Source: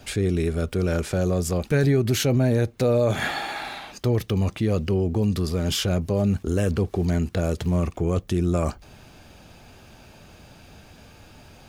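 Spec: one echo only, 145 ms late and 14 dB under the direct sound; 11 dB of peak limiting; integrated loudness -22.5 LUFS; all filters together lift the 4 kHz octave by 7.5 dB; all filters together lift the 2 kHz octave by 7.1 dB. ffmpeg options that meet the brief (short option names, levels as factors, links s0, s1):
-af "equalizer=f=2000:t=o:g=7.5,equalizer=f=4000:t=o:g=7,alimiter=limit=0.126:level=0:latency=1,aecho=1:1:145:0.2,volume=1.68"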